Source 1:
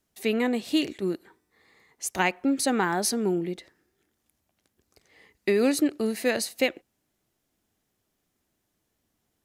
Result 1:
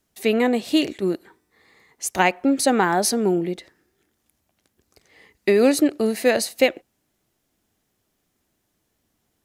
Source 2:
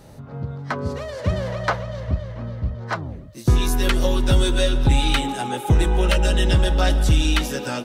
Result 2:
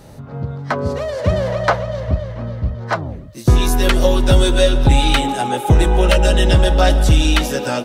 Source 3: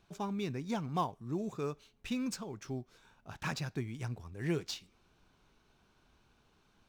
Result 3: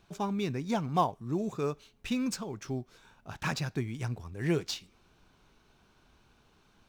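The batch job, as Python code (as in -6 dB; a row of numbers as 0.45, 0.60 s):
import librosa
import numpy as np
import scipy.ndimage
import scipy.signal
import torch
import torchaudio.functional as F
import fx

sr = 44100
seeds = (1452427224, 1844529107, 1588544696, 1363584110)

y = fx.dynamic_eq(x, sr, hz=630.0, q=1.7, threshold_db=-40.0, ratio=4.0, max_db=5)
y = y * 10.0 ** (4.5 / 20.0)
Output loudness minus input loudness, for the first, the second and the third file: +5.5, +5.5, +5.0 LU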